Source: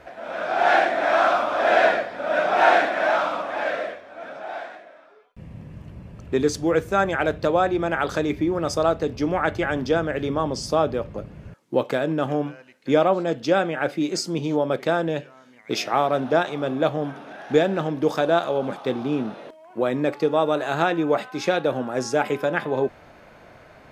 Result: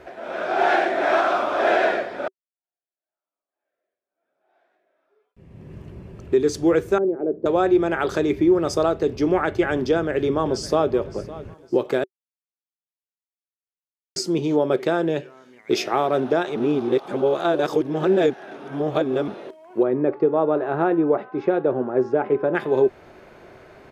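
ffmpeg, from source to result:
-filter_complex "[0:a]asettb=1/sr,asplit=3[s0][s1][s2];[s0]atrim=end=6.984[s3];[s1]atrim=start=6.98:end=7.46,asetpts=PTS-STARTPTS,afade=t=in:d=0.004:c=qsin,afade=t=out:st=0.476:d=0.004:c=qsin,asuperpass=centerf=320:order=4:qfactor=1.1[s4];[s2]atrim=start=7.456[s5];[s3][s4]acrossfade=d=0.004:c1=hsin:c2=qsin[s6];[s6][s5]acrossfade=d=0.004:c1=qsin:c2=hsin,asplit=2[s7][s8];[s8]afade=t=in:st=9.89:d=0.01,afade=t=out:st=10.91:d=0.01,aecho=0:1:560|1120|1680:0.125893|0.0440624|0.0154218[s9];[s7][s9]amix=inputs=2:normalize=0,asettb=1/sr,asplit=3[s10][s11][s12];[s10]atrim=end=19.834[s13];[s11]atrim=start=19.83:end=22.55,asetpts=PTS-STARTPTS,afade=t=in:d=0.004:c=qsin,afade=t=out:st=2.716:d=0.004:c=qsin,lowpass=1300[s14];[s12]atrim=start=22.546[s15];[s13][s14]acrossfade=d=0.004:c1=hsin:c2=qsin[s16];[s16][s15]acrossfade=d=0.004:c1=qsin:c2=hsin,asplit=6[s17][s18][s19][s20][s21][s22];[s17]atrim=end=2.28,asetpts=PTS-STARTPTS,afade=t=out:st=2.276:d=0.004:c=hsin[s23];[s18]atrim=start=2.28:end=12.04,asetpts=PTS-STARTPTS,afade=t=in:d=3.45:c=exp,afade=t=out:st=9.756:d=0.004:c=hsin[s24];[s19]atrim=start=12.04:end=14.16,asetpts=PTS-STARTPTS,volume=0[s25];[s20]atrim=start=14.16:end=16.562,asetpts=PTS-STARTPTS,afade=t=in:d=0.004:c=hsin[s26];[s21]atrim=start=16.558:end=19.282,asetpts=PTS-STARTPTS,areverse[s27];[s22]atrim=start=19.278[s28];[s23][s24][s25][s26]concat=n=4:v=0:a=1[s29];[s29][s27]acrossfade=d=0.004:c1=hsin:c2=hsin[s30];[s30][s28]acrossfade=d=0.004:c1=hsin:c2=hsin,equalizer=f=380:w=4.5:g=12.5,alimiter=limit=0.355:level=0:latency=1:release=252"

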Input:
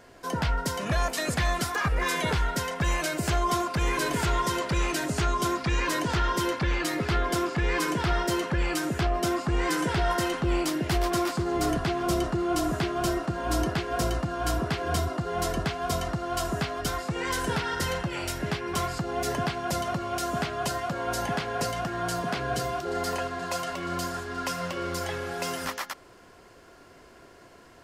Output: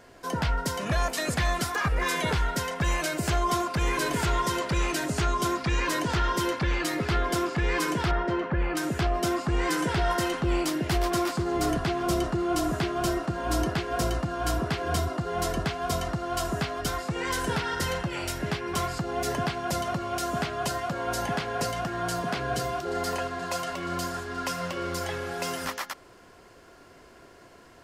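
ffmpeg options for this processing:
-filter_complex "[0:a]asettb=1/sr,asplit=3[s0][s1][s2];[s0]atrim=end=8.114[s3];[s1]atrim=start=8.11:end=8.77,asetpts=PTS-STARTPTS,afade=t=in:d=0.004:c=qsin,afade=t=out:st=0.656:d=0.004:c=qsin,lowpass=2000[s4];[s2]atrim=start=8.766[s5];[s3][s4]acrossfade=d=0.004:c1=hsin:c2=qsin[s6];[s6][s5]acrossfade=d=0.004:c1=qsin:c2=hsin"

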